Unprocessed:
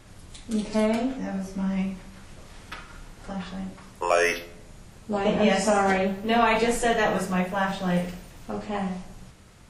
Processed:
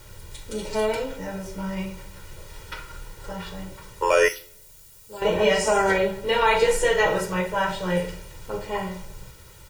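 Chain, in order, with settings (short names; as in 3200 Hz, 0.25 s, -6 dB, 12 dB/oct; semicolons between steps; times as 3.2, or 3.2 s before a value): added noise white -56 dBFS; 4.28–5.22 pre-emphasis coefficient 0.8; comb 2.1 ms, depth 90%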